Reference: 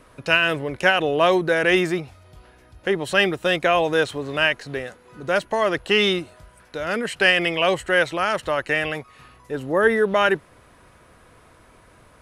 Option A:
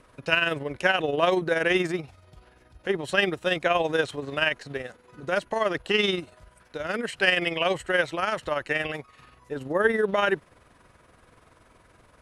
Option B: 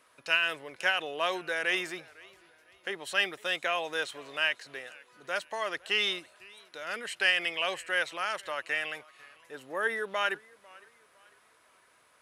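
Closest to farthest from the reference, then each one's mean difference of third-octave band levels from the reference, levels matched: A, B; 1.0, 6.0 dB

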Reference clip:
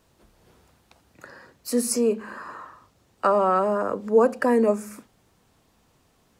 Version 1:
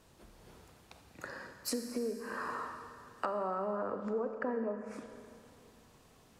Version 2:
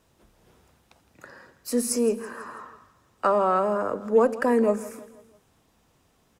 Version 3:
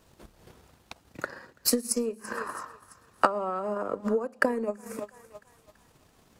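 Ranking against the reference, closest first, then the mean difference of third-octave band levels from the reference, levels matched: 2, 3, 1; 1.5, 6.5, 9.0 dB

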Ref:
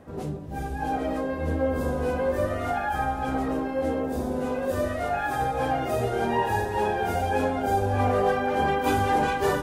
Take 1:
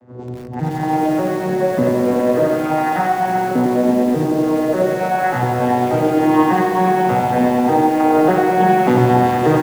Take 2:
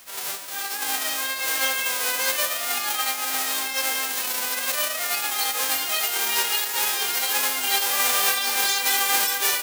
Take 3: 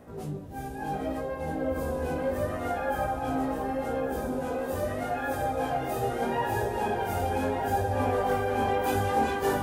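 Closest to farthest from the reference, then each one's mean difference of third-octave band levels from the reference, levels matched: 3, 1, 2; 3.0, 6.0, 18.0 dB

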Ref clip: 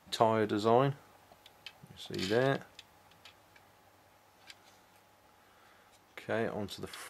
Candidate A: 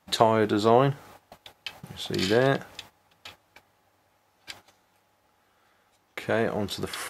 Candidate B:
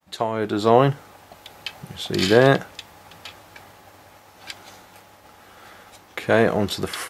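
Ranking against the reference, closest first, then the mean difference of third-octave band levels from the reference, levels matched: B, A; 3.0, 4.5 dB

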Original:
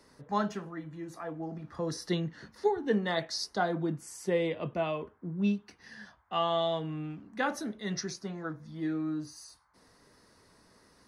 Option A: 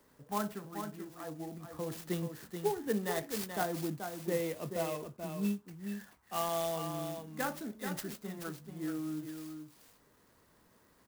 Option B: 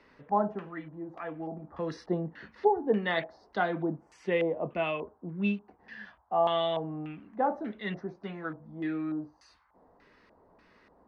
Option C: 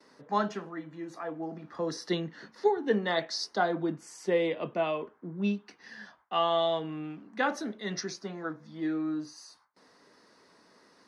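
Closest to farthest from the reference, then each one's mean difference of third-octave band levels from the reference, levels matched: C, B, A; 2.5, 5.0, 9.5 dB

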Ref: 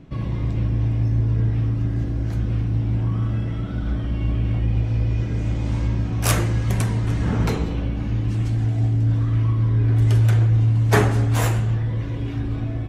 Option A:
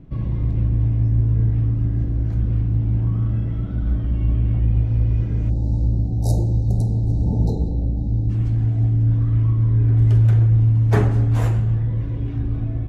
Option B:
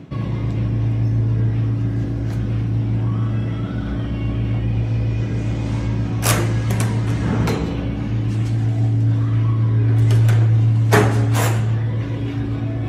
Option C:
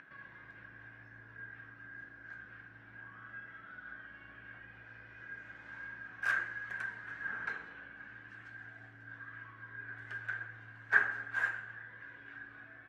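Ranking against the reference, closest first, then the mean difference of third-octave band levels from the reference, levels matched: B, A, C; 1.0, 6.0, 8.0 dB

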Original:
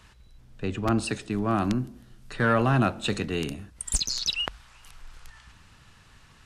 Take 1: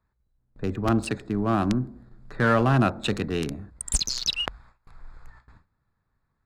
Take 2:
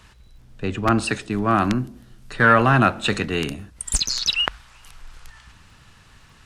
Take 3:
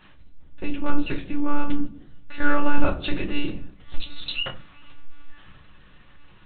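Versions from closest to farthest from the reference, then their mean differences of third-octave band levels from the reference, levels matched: 2, 1, 3; 1.5, 5.5, 8.0 dB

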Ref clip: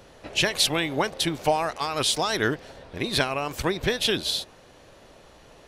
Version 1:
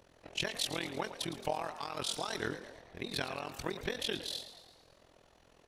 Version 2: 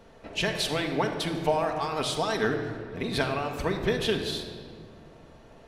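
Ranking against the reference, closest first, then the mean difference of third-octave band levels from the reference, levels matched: 1, 2; 3.0, 5.5 dB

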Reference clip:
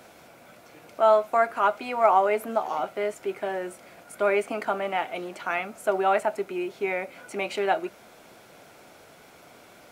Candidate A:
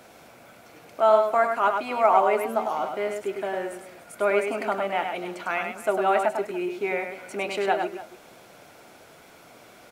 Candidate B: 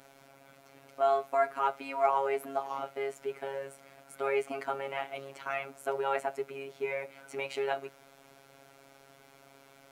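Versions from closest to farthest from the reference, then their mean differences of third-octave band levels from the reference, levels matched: A, B; 2.0, 3.5 dB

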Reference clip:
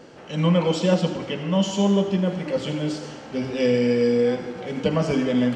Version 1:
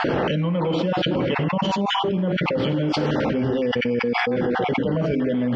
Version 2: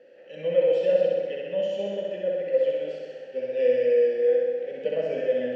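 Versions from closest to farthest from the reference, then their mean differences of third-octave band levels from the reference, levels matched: 1, 2; 7.5, 10.5 dB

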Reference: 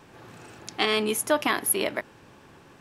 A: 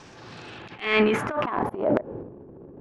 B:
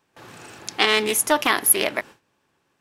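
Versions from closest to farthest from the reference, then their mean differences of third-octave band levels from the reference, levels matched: B, A; 6.5, 9.0 dB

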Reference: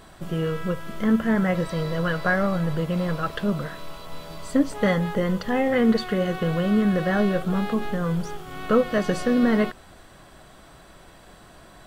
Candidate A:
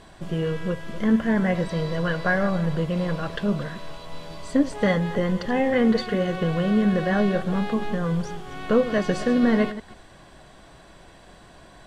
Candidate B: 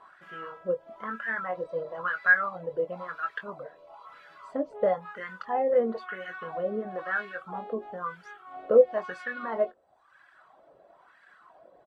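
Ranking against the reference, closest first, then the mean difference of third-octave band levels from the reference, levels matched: A, B; 2.0, 12.0 dB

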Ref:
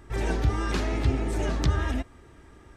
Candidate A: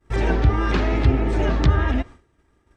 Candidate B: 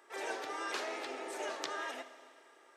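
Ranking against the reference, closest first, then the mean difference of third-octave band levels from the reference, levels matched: A, B; 5.5, 10.0 dB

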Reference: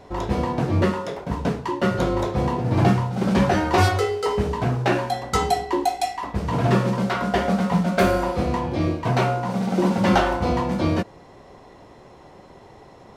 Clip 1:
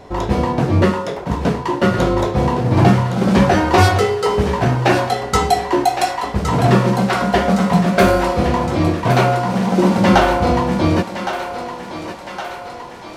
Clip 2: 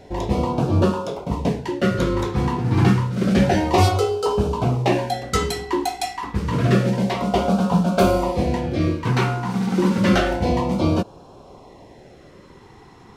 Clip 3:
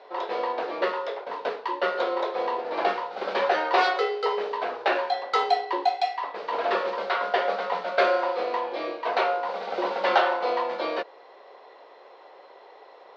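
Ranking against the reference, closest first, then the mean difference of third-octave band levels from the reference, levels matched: 2, 1, 3; 1.5, 3.0, 10.5 dB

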